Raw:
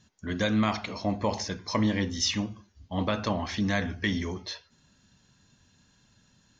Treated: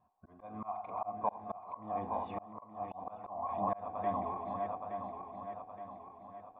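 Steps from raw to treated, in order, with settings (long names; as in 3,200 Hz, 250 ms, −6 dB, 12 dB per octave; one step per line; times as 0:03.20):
feedback delay that plays each chunk backwards 435 ms, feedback 69%, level −5.5 dB
formant resonators in series a
volume swells 343 ms
level +11.5 dB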